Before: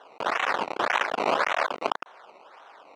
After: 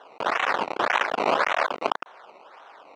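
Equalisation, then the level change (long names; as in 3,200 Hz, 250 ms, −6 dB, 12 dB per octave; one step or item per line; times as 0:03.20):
high-shelf EQ 8,300 Hz −6.5 dB
+2.0 dB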